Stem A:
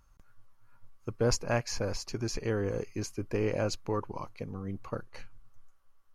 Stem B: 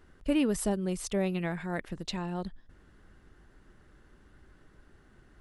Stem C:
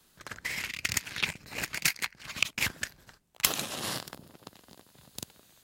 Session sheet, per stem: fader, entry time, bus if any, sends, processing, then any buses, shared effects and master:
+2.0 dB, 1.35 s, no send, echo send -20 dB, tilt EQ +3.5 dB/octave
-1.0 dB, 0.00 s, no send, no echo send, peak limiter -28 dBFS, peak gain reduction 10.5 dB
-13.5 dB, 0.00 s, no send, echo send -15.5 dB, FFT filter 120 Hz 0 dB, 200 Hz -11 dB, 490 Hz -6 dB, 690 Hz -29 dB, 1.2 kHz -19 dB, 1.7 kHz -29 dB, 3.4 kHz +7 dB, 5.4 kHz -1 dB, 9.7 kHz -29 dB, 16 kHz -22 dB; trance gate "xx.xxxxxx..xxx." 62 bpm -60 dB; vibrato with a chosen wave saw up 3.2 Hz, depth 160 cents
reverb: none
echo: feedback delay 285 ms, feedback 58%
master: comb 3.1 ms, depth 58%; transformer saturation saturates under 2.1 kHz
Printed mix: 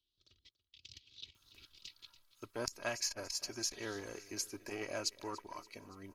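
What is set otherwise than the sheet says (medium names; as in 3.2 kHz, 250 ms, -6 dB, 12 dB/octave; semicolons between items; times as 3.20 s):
stem A +2.0 dB -> -6.5 dB; stem B: muted; stem C -13.5 dB -> -21.5 dB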